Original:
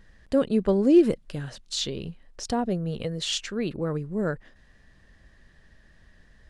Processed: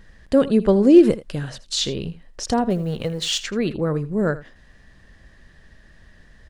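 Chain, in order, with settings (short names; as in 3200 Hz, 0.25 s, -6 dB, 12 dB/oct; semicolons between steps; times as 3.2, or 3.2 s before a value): 2.7–3.39 G.711 law mismatch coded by A; echo 81 ms -16.5 dB; gain +6 dB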